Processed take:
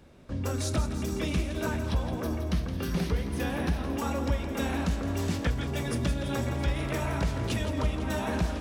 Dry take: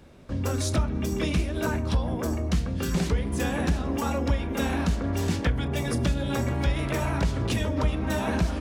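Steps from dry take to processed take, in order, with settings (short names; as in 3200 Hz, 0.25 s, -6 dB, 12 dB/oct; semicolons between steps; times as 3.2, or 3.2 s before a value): 1.84–3.87 bell 7400 Hz -14.5 dB 0.28 oct; thinning echo 0.167 s, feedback 71%, level -10 dB; gain -3.5 dB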